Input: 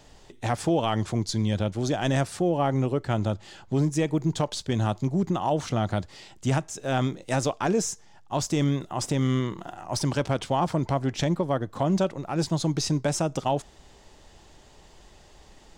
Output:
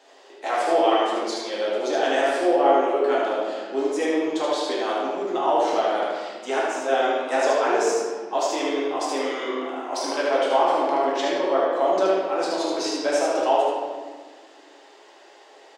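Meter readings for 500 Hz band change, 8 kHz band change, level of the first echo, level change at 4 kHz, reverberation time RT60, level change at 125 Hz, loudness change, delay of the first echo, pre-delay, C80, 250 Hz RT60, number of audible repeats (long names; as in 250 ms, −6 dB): +8.0 dB, −1.5 dB, −2.5 dB, +4.0 dB, 1.5 s, below −30 dB, +4.0 dB, 76 ms, 4 ms, 0.5 dB, 2.5 s, 1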